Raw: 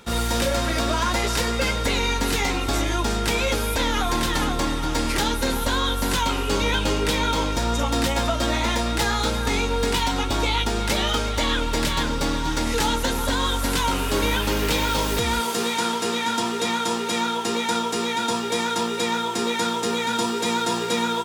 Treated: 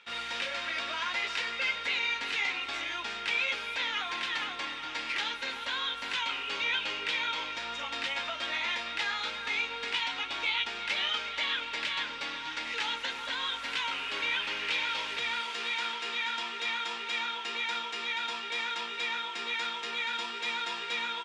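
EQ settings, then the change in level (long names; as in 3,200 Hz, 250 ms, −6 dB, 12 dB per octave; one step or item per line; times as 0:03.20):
resonant band-pass 2,500 Hz, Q 1.9
high-frequency loss of the air 70 metres
0.0 dB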